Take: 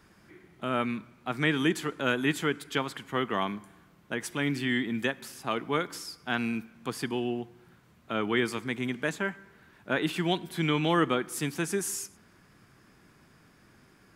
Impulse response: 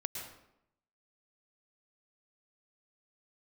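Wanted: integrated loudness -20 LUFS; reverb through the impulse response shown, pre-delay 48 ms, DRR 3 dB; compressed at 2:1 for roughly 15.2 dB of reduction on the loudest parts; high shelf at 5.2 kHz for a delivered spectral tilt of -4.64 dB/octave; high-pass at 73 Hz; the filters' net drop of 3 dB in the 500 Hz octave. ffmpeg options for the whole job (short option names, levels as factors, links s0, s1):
-filter_complex "[0:a]highpass=73,equalizer=f=500:t=o:g=-4,highshelf=f=5200:g=-6.5,acompressor=threshold=0.00282:ratio=2,asplit=2[s0][s1];[1:a]atrim=start_sample=2205,adelay=48[s2];[s1][s2]afir=irnorm=-1:irlink=0,volume=0.631[s3];[s0][s3]amix=inputs=2:normalize=0,volume=15"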